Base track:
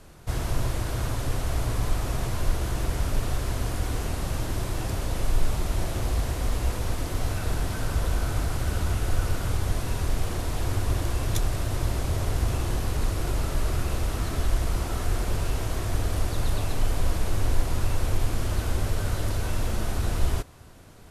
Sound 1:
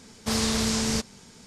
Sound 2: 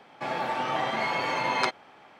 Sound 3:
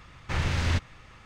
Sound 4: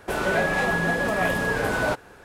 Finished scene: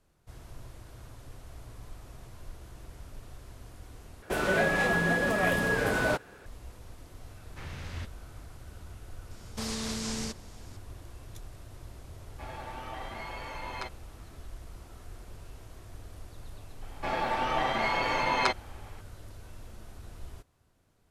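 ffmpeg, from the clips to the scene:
ffmpeg -i bed.wav -i cue0.wav -i cue1.wav -i cue2.wav -i cue3.wav -filter_complex "[2:a]asplit=2[link_01][link_02];[0:a]volume=-20dB[link_03];[4:a]equalizer=frequency=890:width_type=o:width=0.71:gain=-3.5[link_04];[1:a]alimiter=limit=-18.5dB:level=0:latency=1:release=161[link_05];[link_03]asplit=2[link_06][link_07];[link_06]atrim=end=4.224[link_08];[link_04]atrim=end=2.24,asetpts=PTS-STARTPTS,volume=-2.5dB[link_09];[link_07]atrim=start=6.456[link_10];[3:a]atrim=end=1.25,asetpts=PTS-STARTPTS,volume=-14dB,afade=type=in:duration=0.004:curve=hsin,afade=type=out:start_time=1.246:duration=0.004:curve=hsin,adelay=7270[link_11];[link_05]atrim=end=1.46,asetpts=PTS-STARTPTS,volume=-6dB,afade=type=in:duration=0.004:curve=hsin,afade=type=out:start_time=1.456:duration=0.004:curve=hsin,adelay=9310[link_12];[link_01]atrim=end=2.19,asetpts=PTS-STARTPTS,volume=-13dB,afade=type=in:duration=0.004:curve=hsin,afade=type=out:start_time=2.186:duration=0.004:curve=hsin,adelay=12180[link_13];[link_02]atrim=end=2.19,asetpts=PTS-STARTPTS,volume=-0.5dB,afade=type=in:duration=0.004:curve=hsin,afade=type=out:start_time=2.186:duration=0.004:curve=hsin,adelay=16820[link_14];[link_08][link_09]acrossfade=duration=0.004:curve1=hsin:curve2=hsin[link_15];[link_15][link_10]acrossfade=duration=0.004:curve1=hsin:curve2=hsin[link_16];[link_16][link_11][link_12][link_13][link_14]amix=inputs=5:normalize=0" out.wav

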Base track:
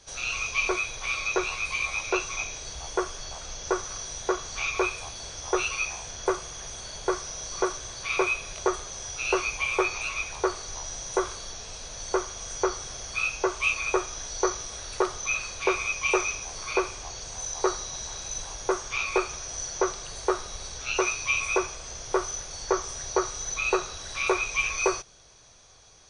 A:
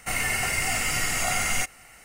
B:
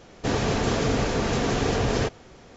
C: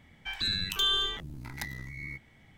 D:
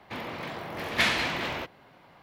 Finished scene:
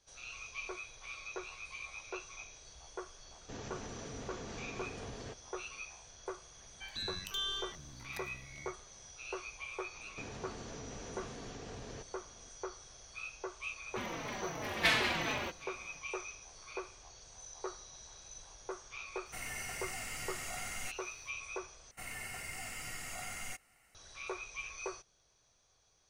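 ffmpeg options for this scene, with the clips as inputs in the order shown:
ffmpeg -i bed.wav -i cue0.wav -i cue1.wav -i cue2.wav -i cue3.wav -filter_complex "[2:a]asplit=2[link_01][link_02];[1:a]asplit=2[link_03][link_04];[0:a]volume=-17dB[link_05];[link_01]alimiter=limit=-19dB:level=0:latency=1:release=61[link_06];[link_02]acompressor=threshold=-30dB:ratio=6:attack=3.2:release=140:knee=1:detection=peak[link_07];[4:a]asplit=2[link_08][link_09];[link_09]adelay=4.1,afreqshift=-2.8[link_10];[link_08][link_10]amix=inputs=2:normalize=1[link_11];[link_05]asplit=2[link_12][link_13];[link_12]atrim=end=21.914[link_14];[link_04]atrim=end=2.04,asetpts=PTS-STARTPTS,volume=-18dB[link_15];[link_13]atrim=start=23.946[link_16];[link_06]atrim=end=2.56,asetpts=PTS-STARTPTS,volume=-18dB,afade=type=in:duration=0.004:curve=hsin,afade=type=out:start_time=2.556:duration=0.004:curve=hsin,adelay=143325S[link_17];[3:a]atrim=end=2.57,asetpts=PTS-STARTPTS,volume=-10.5dB,afade=type=in:duration=0.004:curve=hsin,afade=type=out:start_time=2.566:duration=0.004:curve=hsin,adelay=6550[link_18];[link_07]atrim=end=2.56,asetpts=PTS-STARTPTS,volume=-13.5dB,afade=type=in:duration=0.004:curve=hsin,afade=type=out:start_time=2.556:duration=0.004:curve=hsin,adelay=438354S[link_19];[link_11]atrim=end=2.22,asetpts=PTS-STARTPTS,volume=-1.5dB,afade=type=in:duration=0.1,afade=type=out:start_time=2.12:duration=0.1,adelay=13850[link_20];[link_03]atrim=end=2.04,asetpts=PTS-STARTPTS,volume=-16.5dB,afade=type=in:duration=0.004:curve=hsin,afade=type=out:start_time=2.036:duration=0.004:curve=hsin,adelay=19260[link_21];[link_14][link_15]acrossfade=duration=0.004:curve1=hsin:curve2=hsin[link_22];[link_22][link_16]acrossfade=duration=0.004:curve1=hsin:curve2=hsin[link_23];[link_23][link_17][link_18][link_19][link_20][link_21]amix=inputs=6:normalize=0" out.wav

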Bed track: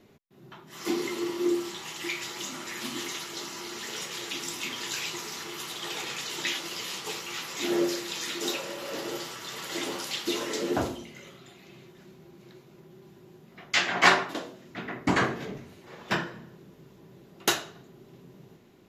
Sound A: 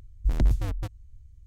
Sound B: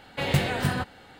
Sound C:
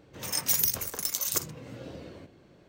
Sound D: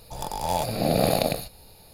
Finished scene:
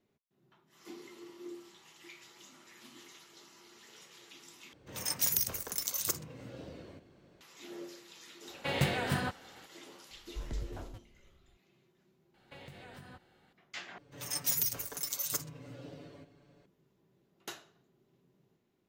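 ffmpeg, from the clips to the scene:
ffmpeg -i bed.wav -i cue0.wav -i cue1.wav -i cue2.wav -filter_complex "[3:a]asplit=2[link_01][link_02];[2:a]asplit=2[link_03][link_04];[0:a]volume=-19.5dB[link_05];[link_03]lowshelf=frequency=79:gain=-9.5[link_06];[link_04]acompressor=threshold=-31dB:ratio=6:attack=10:release=88:knee=1:detection=rms[link_07];[link_02]aecho=1:1:7:0.87[link_08];[link_05]asplit=3[link_09][link_10][link_11];[link_09]atrim=end=4.734[link_12];[link_01]atrim=end=2.68,asetpts=PTS-STARTPTS,volume=-4.5dB[link_13];[link_10]atrim=start=7.406:end=13.984[link_14];[link_08]atrim=end=2.68,asetpts=PTS-STARTPTS,volume=-8.5dB[link_15];[link_11]atrim=start=16.656[link_16];[link_06]atrim=end=1.19,asetpts=PTS-STARTPTS,volume=-5dB,afade=type=in:duration=0.004:curve=hsin,afade=type=out:start_time=1.186:duration=0.004:curve=hsin,adelay=8470[link_17];[1:a]atrim=end=1.46,asetpts=PTS-STARTPTS,volume=-17dB,afade=type=in:duration=0.004:curve=hsin,afade=type=out:start_time=1.456:duration=0.004:curve=hsin,adelay=10110[link_18];[link_07]atrim=end=1.19,asetpts=PTS-STARTPTS,volume=-17.5dB,afade=type=in:duration=0.004:curve=hsin,afade=type=out:start_time=1.186:duration=0.004:curve=hsin,adelay=12340[link_19];[link_12][link_13]acrossfade=duration=0.004:curve1=hsin:curve2=hsin[link_20];[link_20][link_14]acrossfade=duration=0.004:curve1=hsin:curve2=hsin[link_21];[link_21][link_15]acrossfade=duration=0.004:curve1=hsin:curve2=hsin[link_22];[link_22][link_16]acrossfade=duration=0.004:curve1=hsin:curve2=hsin[link_23];[link_23][link_17][link_18][link_19]amix=inputs=4:normalize=0" out.wav

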